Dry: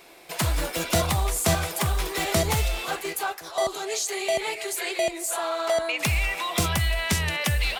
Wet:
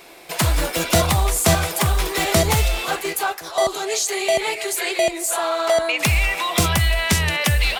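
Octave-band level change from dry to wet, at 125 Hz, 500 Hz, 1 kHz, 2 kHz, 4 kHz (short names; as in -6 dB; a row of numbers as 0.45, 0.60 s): +6.0, +6.0, +6.0, +6.0, +6.0 dB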